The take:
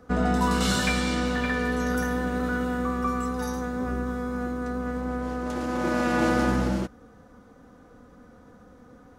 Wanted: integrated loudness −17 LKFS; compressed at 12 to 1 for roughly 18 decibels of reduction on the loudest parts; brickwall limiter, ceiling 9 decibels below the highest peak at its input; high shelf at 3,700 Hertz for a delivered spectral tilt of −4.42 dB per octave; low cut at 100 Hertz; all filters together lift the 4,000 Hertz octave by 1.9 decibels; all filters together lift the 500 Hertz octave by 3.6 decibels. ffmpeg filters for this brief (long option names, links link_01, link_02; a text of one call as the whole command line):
ffmpeg -i in.wav -af "highpass=100,equalizer=frequency=500:width_type=o:gain=4,highshelf=frequency=3700:gain=-6,equalizer=frequency=4000:width_type=o:gain=6,acompressor=threshold=-36dB:ratio=12,volume=26.5dB,alimiter=limit=-7.5dB:level=0:latency=1" out.wav